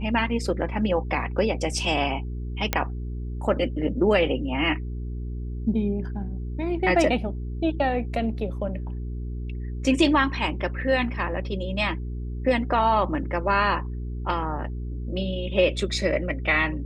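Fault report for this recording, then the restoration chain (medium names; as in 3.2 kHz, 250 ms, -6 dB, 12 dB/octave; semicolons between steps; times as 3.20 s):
hum 60 Hz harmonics 7 -31 dBFS
2.73 s: pop -6 dBFS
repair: de-click; de-hum 60 Hz, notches 7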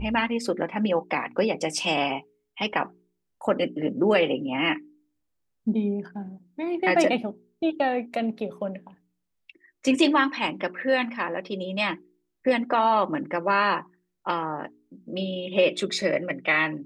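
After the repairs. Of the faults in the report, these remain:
nothing left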